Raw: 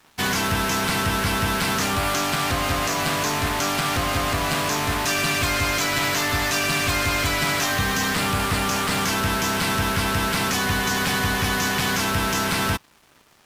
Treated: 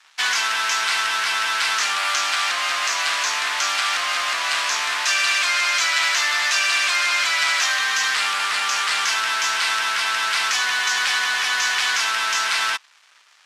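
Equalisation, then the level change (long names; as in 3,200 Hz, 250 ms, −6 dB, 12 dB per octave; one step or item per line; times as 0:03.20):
flat-topped band-pass 3,100 Hz, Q 0.51
+5.0 dB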